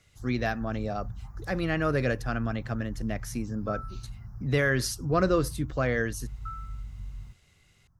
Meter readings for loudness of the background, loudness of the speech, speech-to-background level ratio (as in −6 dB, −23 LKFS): −42.0 LKFS, −29.5 LKFS, 12.5 dB